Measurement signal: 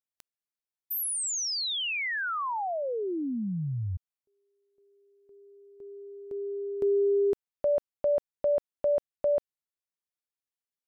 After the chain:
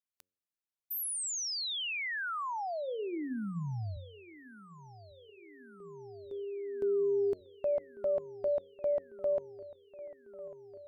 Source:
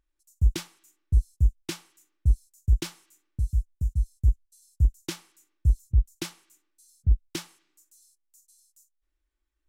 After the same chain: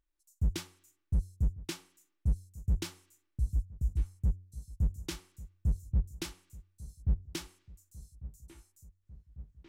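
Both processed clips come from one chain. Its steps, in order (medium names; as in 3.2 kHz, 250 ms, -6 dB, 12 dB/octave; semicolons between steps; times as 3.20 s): de-hum 91.86 Hz, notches 6; hard clipper -18 dBFS; on a send: feedback echo behind a low-pass 1147 ms, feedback 71%, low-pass 2.5 kHz, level -18 dB; on the sum: trim -5 dB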